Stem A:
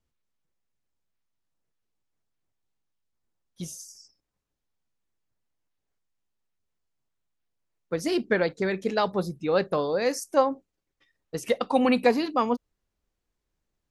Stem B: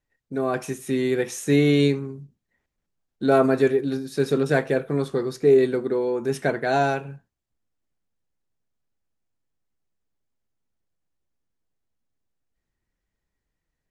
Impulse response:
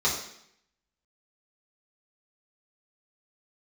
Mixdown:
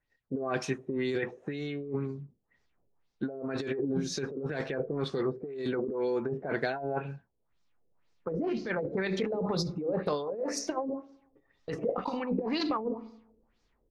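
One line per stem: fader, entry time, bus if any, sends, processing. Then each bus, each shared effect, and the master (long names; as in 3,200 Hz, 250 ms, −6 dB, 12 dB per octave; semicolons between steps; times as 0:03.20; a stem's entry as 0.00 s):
−2.0 dB, 0.35 s, send −22.5 dB, compressor whose output falls as the input rises −28 dBFS, ratio −0.5; automatic ducking −10 dB, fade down 0.35 s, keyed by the second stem
−7.0 dB, 0.00 s, no send, no processing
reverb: on, RT60 0.70 s, pre-delay 3 ms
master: auto-filter low-pass sine 2 Hz 440–5,400 Hz; compressor whose output falls as the input rises −32 dBFS, ratio −1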